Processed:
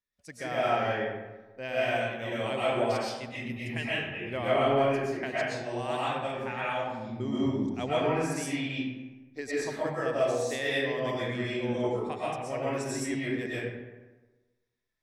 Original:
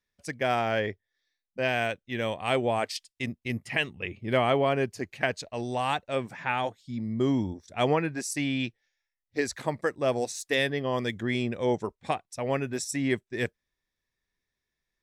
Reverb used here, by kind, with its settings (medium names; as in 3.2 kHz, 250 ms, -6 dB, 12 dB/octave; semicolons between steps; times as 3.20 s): algorithmic reverb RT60 1.2 s, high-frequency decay 0.55×, pre-delay 85 ms, DRR -8.5 dB; trim -10.5 dB